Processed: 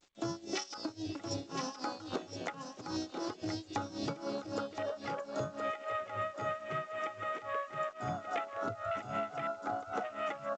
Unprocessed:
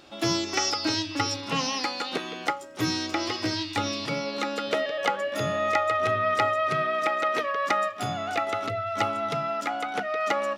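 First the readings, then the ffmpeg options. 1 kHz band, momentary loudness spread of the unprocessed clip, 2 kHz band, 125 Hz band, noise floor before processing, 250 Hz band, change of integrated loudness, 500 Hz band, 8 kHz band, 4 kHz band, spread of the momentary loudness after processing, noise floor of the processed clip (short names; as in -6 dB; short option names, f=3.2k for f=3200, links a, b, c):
-11.0 dB, 6 LU, -14.0 dB, -9.5 dB, -38 dBFS, -8.5 dB, -11.5 dB, -10.0 dB, -13.5 dB, -16.0 dB, 4 LU, -53 dBFS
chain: -filter_complex "[0:a]afwtdn=0.0355,aemphasis=mode=production:type=50kf,bandreject=f=247.9:t=h:w=4,bandreject=f=495.8:t=h:w=4,bandreject=f=743.7:t=h:w=4,adynamicequalizer=threshold=0.00891:dfrequency=3000:dqfactor=0.83:tfrequency=3000:tqfactor=0.83:attack=5:release=100:ratio=0.375:range=3:mode=cutabove:tftype=bell,acontrast=28,alimiter=limit=-16dB:level=0:latency=1:release=167,acompressor=threshold=-28dB:ratio=20,crystalizer=i=1:c=0,tremolo=f=3.7:d=0.92,acrusher=bits=9:mix=0:aa=0.000001,asplit=2[a][b];[b]aecho=0:1:1019:0.422[c];[a][c]amix=inputs=2:normalize=0,volume=-3dB" -ar 16000 -c:a g722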